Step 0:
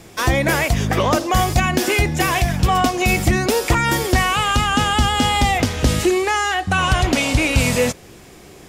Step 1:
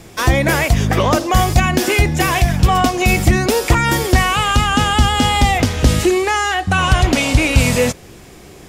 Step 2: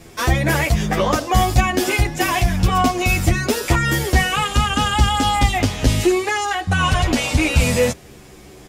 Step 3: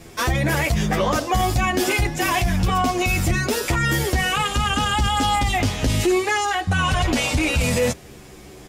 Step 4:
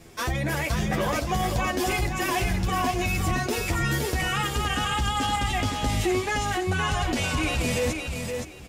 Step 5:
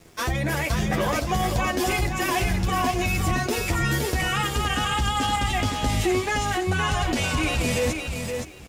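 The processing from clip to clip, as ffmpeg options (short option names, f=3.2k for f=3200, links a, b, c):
-af "lowshelf=f=130:g=4,volume=2dB"
-filter_complex "[0:a]asplit=2[a][b];[b]adelay=9.7,afreqshift=-0.28[c];[a][c]amix=inputs=2:normalize=1"
-af "alimiter=limit=-11.5dB:level=0:latency=1:release=21"
-af "aecho=1:1:518|1036|1554:0.562|0.112|0.0225,volume=-6.5dB"
-af "aeval=exprs='sgn(val(0))*max(abs(val(0))-0.00211,0)':c=same,volume=2dB"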